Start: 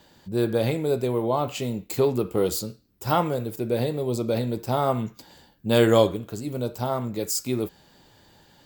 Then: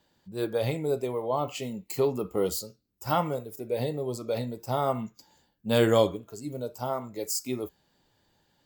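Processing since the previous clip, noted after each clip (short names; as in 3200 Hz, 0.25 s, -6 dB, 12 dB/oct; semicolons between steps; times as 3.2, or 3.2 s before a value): spectral noise reduction 10 dB; gain -3.5 dB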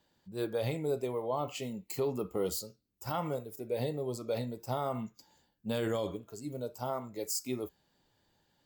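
limiter -19 dBFS, peak gain reduction 10.5 dB; gain -4 dB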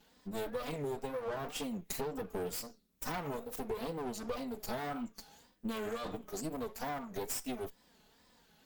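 minimum comb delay 4.3 ms; wow and flutter 150 cents; compressor 6:1, threshold -45 dBFS, peak gain reduction 14.5 dB; gain +9 dB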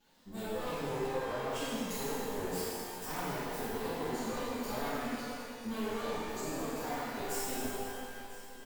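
echo 0.997 s -17 dB; shimmer reverb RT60 2.2 s, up +12 st, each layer -8 dB, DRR -9.5 dB; gain -8 dB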